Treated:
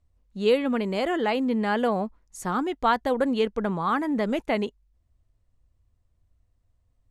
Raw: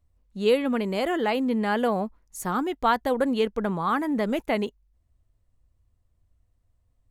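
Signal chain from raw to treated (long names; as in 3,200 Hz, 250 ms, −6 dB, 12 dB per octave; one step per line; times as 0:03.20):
low-pass filter 8,800 Hz 12 dB per octave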